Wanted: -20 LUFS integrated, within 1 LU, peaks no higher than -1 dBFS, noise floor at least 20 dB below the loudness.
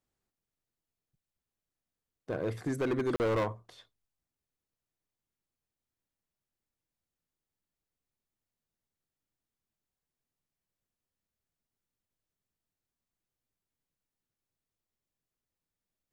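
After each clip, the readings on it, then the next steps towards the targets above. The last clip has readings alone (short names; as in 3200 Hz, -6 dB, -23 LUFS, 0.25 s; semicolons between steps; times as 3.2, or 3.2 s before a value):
clipped 0.7%; flat tops at -26.0 dBFS; dropouts 1; longest dropout 39 ms; loudness -32.5 LUFS; peak -26.0 dBFS; loudness target -20.0 LUFS
-> clip repair -26 dBFS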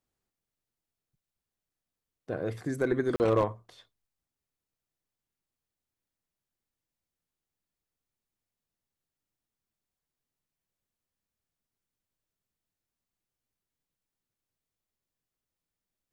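clipped 0.0%; dropouts 1; longest dropout 39 ms
-> interpolate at 3.16, 39 ms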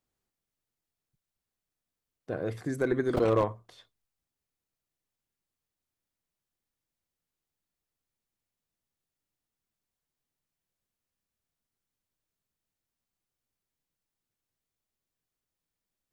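dropouts 0; loudness -29.5 LUFS; peak -14.0 dBFS; loudness target -20.0 LUFS
-> gain +9.5 dB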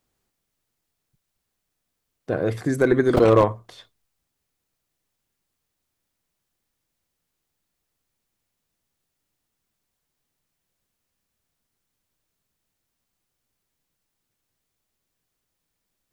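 loudness -20.0 LUFS; peak -4.5 dBFS; noise floor -80 dBFS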